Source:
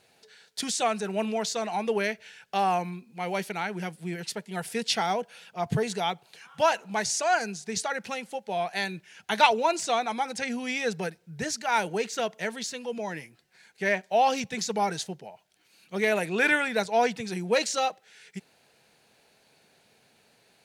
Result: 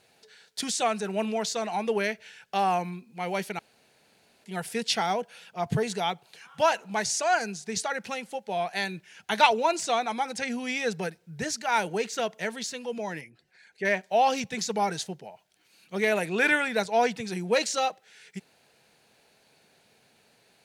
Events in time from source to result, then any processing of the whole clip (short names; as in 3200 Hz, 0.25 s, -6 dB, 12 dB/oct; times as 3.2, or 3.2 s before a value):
3.59–4.44 room tone
13.21–13.85 formant sharpening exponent 1.5